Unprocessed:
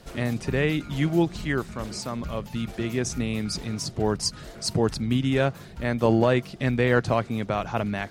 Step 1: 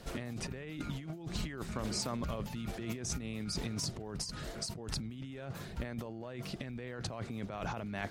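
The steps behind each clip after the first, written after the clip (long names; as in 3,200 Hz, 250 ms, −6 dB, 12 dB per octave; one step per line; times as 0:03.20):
brickwall limiter −13.5 dBFS, peak gain reduction 7 dB
compressor whose output falls as the input rises −33 dBFS, ratio −1
level −7 dB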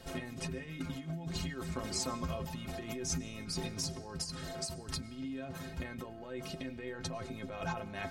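stiff-string resonator 78 Hz, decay 0.29 s, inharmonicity 0.03
comb and all-pass reverb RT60 2.6 s, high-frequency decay 0.6×, pre-delay 70 ms, DRR 16.5 dB
level +9 dB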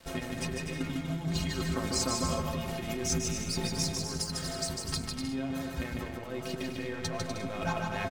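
dead-zone distortion −53.5 dBFS
bouncing-ball delay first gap 150 ms, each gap 0.65×, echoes 5
level +5.5 dB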